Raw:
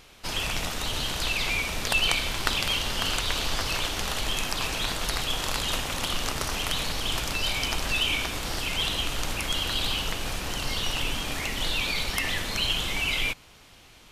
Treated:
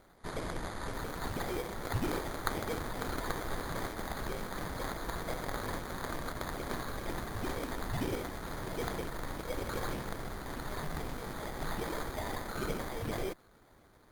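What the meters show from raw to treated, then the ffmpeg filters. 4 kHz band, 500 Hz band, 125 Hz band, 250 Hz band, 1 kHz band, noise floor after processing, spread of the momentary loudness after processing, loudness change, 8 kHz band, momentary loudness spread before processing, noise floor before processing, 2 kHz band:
-21.5 dB, -1.5 dB, -5.0 dB, -2.0 dB, -5.5 dB, -61 dBFS, 5 LU, -11.5 dB, -15.5 dB, 5 LU, -52 dBFS, -13.0 dB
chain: -af "acrusher=samples=16:mix=1:aa=0.000001,volume=-8dB" -ar 48000 -c:a libopus -b:a 32k

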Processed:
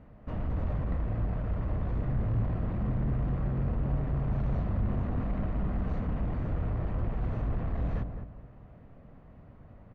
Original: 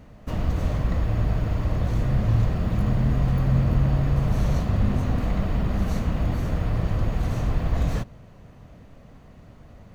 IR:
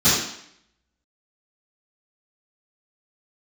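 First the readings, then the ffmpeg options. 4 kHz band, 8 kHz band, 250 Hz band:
under -15 dB, n/a, -7.5 dB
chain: -filter_complex "[0:a]lowpass=1.9k,asoftclip=type=tanh:threshold=-19dB,asplit=2[a][b];[b]adelay=209,lowpass=f=1.2k:p=1,volume=-7dB,asplit=2[c][d];[d]adelay=209,lowpass=f=1.2k:p=1,volume=0.34,asplit=2[e][f];[f]adelay=209,lowpass=f=1.2k:p=1,volume=0.34,asplit=2[g][h];[h]adelay=209,lowpass=f=1.2k:p=1,volume=0.34[i];[a][c][e][g][i]amix=inputs=5:normalize=0,volume=-5.5dB"

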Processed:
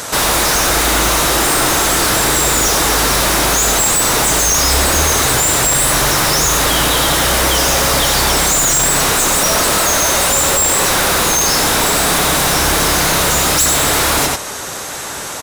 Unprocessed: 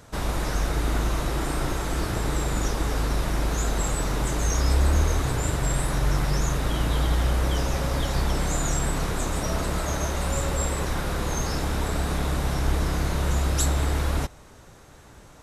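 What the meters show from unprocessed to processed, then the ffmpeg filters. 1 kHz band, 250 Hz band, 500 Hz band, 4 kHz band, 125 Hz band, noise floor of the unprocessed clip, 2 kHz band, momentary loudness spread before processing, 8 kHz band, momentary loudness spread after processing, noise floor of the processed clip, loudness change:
+15.5 dB, +9.0 dB, +13.0 dB, +20.5 dB, +2.5 dB, -49 dBFS, +17.5 dB, 4 LU, +21.5 dB, 1 LU, -25 dBFS, +15.0 dB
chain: -filter_complex "[0:a]highshelf=f=4k:g=9.5,asplit=2[a][b];[b]adelay=93.29,volume=-7dB,highshelf=f=4k:g=-2.1[c];[a][c]amix=inputs=2:normalize=0,asplit=2[d][e];[e]highpass=f=720:p=1,volume=29dB,asoftclip=type=tanh:threshold=-9.5dB[f];[d][f]amix=inputs=2:normalize=0,lowpass=f=1.2k:p=1,volume=-6dB,crystalizer=i=4:c=0,volume=4dB"

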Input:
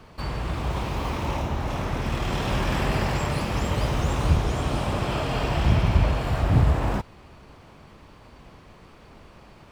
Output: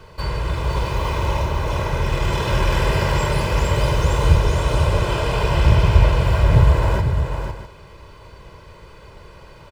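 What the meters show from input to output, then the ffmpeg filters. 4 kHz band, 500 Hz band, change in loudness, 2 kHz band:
+5.5 dB, +6.5 dB, +6.0 dB, +6.0 dB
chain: -af "aecho=1:1:2:0.69,aecho=1:1:501|651:0.447|0.188,volume=3dB"

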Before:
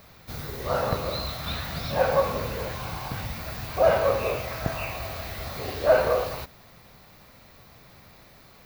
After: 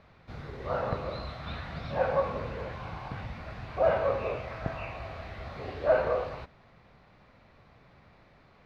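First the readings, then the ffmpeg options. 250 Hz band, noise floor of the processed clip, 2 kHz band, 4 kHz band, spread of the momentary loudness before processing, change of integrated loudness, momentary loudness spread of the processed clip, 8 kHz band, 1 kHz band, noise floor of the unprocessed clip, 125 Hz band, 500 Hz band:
-5.0 dB, -59 dBFS, -6.0 dB, -12.5 dB, 13 LU, -5.5 dB, 15 LU, under -20 dB, -5.0 dB, -52 dBFS, -5.0 dB, -5.0 dB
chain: -af "lowpass=2.6k,volume=-5dB"

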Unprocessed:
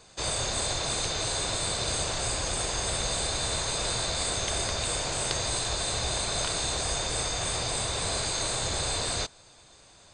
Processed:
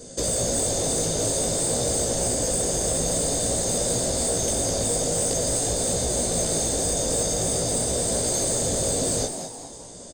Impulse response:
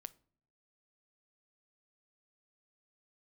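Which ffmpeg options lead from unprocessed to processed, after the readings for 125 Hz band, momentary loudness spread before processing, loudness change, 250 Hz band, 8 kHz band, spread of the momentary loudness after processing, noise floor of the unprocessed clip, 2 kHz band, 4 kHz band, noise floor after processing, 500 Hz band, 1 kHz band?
+5.0 dB, 1 LU, +5.5 dB, +11.0 dB, +8.0 dB, 1 LU, -55 dBFS, -5.5 dB, -2.5 dB, -41 dBFS, +9.5 dB, 0.0 dB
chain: -filter_complex "[0:a]equalizer=f=160:t=o:w=0.33:g=6,equalizer=f=250:t=o:w=0.33:g=12,equalizer=f=1k:t=o:w=0.33:g=4,equalizer=f=2.5k:t=o:w=0.33:g=-12,equalizer=f=4k:t=o:w=0.33:g=-10,flanger=delay=16.5:depth=2.5:speed=0.49,acompressor=threshold=-38dB:ratio=3,lowshelf=f=730:t=q:w=3:g=11,crystalizer=i=6:c=0,asoftclip=type=tanh:threshold=-21dB,asplit=5[a][b][c][d][e];[b]adelay=204,afreqshift=120,volume=-8.5dB[f];[c]adelay=408,afreqshift=240,volume=-16.7dB[g];[d]adelay=612,afreqshift=360,volume=-24.9dB[h];[e]adelay=816,afreqshift=480,volume=-33dB[i];[a][f][g][h][i]amix=inputs=5:normalize=0,asplit=2[j][k];[1:a]atrim=start_sample=2205,asetrate=28665,aresample=44100[l];[k][l]afir=irnorm=-1:irlink=0,volume=9.5dB[m];[j][m]amix=inputs=2:normalize=0,volume=-7dB"

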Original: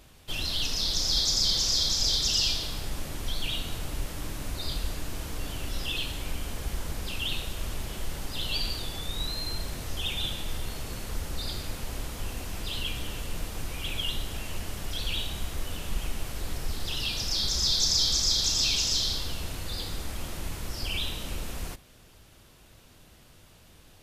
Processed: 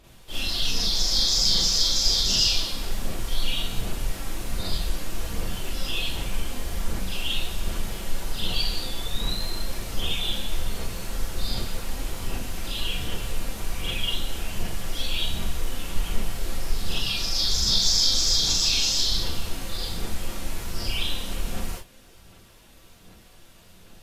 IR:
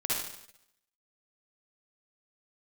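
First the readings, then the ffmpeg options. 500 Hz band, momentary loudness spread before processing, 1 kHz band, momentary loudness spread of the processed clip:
+3.5 dB, 14 LU, +3.5 dB, 15 LU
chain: -filter_complex "[0:a]aphaser=in_gain=1:out_gain=1:delay=3.8:decay=0.37:speed=1.3:type=sinusoidal[a];[1:a]atrim=start_sample=2205,afade=t=out:st=0.18:d=0.01,atrim=end_sample=8379,asetrate=66150,aresample=44100[b];[a][b]afir=irnorm=-1:irlink=0"

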